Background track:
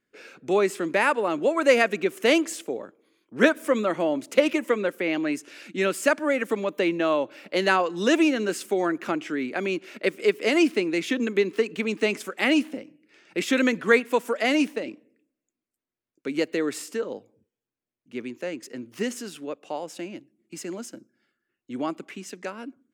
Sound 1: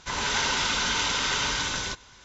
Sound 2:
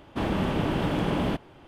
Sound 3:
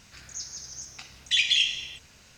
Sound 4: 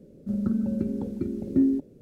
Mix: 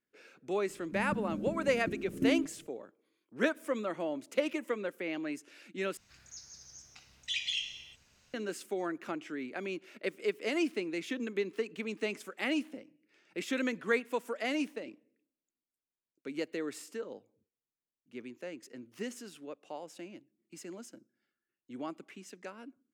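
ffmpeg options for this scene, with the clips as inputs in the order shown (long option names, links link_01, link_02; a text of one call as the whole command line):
ffmpeg -i bed.wav -i cue0.wav -i cue1.wav -i cue2.wav -i cue3.wav -filter_complex "[0:a]volume=-11dB[link_01];[4:a]aecho=1:1:6.5:0.55[link_02];[link_01]asplit=2[link_03][link_04];[link_03]atrim=end=5.974[link_05];[3:a]atrim=end=2.37,asetpts=PTS-STARTPTS,volume=-12dB[link_06];[link_04]atrim=start=8.336[link_07];[link_02]atrim=end=2.01,asetpts=PTS-STARTPTS,volume=-9dB,afade=type=in:duration=0.004:curve=hsin,afade=type=out:start_time=2.006:duration=0.004:curve=hsin,adelay=660[link_08];[link_05][link_06]acrossfade=duration=0.004:curve1=hsin:curve2=hsin[link_09];[link_09][link_07]acrossfade=duration=0.004:curve1=hsin:curve2=hsin[link_10];[link_10][link_08]amix=inputs=2:normalize=0" out.wav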